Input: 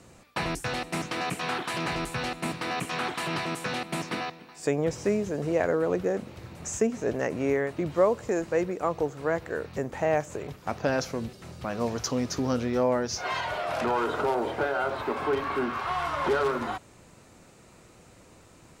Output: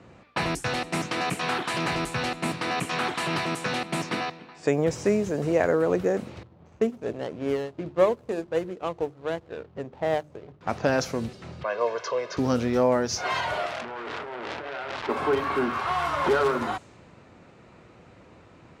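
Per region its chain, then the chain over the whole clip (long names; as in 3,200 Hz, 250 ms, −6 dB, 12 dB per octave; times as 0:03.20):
0:06.43–0:10.61: running median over 25 samples + mains-hum notches 50/100/150/200/250/300/350/400 Hz + expander for the loud parts, over −41 dBFS
0:11.63–0:12.37: band-pass filter 490–2,800 Hz + comb filter 1.9 ms, depth 98%
0:13.66–0:15.09: compressor whose output falls as the input rises −33 dBFS + saturating transformer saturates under 3,600 Hz
whole clip: high-pass filter 57 Hz; low-pass that shuts in the quiet parts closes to 2,700 Hz, open at −26 dBFS; level +3 dB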